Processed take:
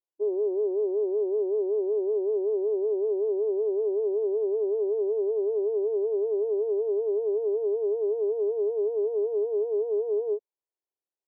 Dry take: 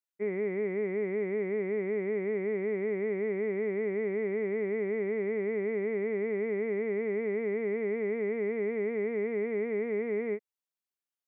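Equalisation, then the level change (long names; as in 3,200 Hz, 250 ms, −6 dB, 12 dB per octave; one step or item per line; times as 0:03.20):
linear-phase brick-wall band-pass 310–1,100 Hz
spectral tilt −4.5 dB per octave
0.0 dB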